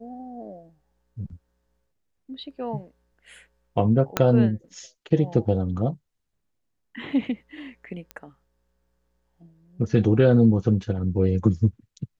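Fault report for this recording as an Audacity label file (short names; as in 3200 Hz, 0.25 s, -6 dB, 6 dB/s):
4.170000	4.170000	pop -5 dBFS
8.110000	8.110000	pop -20 dBFS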